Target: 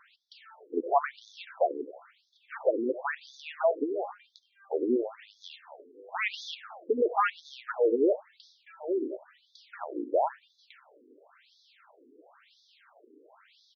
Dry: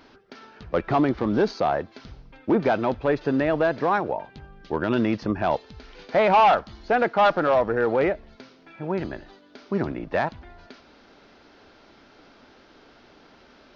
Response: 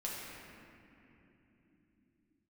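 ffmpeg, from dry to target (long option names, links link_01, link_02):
-filter_complex "[0:a]asplit=2[link_01][link_02];[link_02]adelay=97,lowpass=frequency=1500:poles=1,volume=-13.5dB,asplit=2[link_03][link_04];[link_04]adelay=97,lowpass=frequency=1500:poles=1,volume=0.39,asplit=2[link_05][link_06];[link_06]adelay=97,lowpass=frequency=1500:poles=1,volume=0.39,asplit=2[link_07][link_08];[link_08]adelay=97,lowpass=frequency=1500:poles=1,volume=0.39[link_09];[link_01][link_03][link_05][link_07][link_09]amix=inputs=5:normalize=0,acrusher=bits=7:mode=log:mix=0:aa=0.000001,afftfilt=real='re*between(b*sr/1024,330*pow(4800/330,0.5+0.5*sin(2*PI*0.97*pts/sr))/1.41,330*pow(4800/330,0.5+0.5*sin(2*PI*0.97*pts/sr))*1.41)':imag='im*between(b*sr/1024,330*pow(4800/330,0.5+0.5*sin(2*PI*0.97*pts/sr))/1.41,330*pow(4800/330,0.5+0.5*sin(2*PI*0.97*pts/sr))*1.41)':win_size=1024:overlap=0.75"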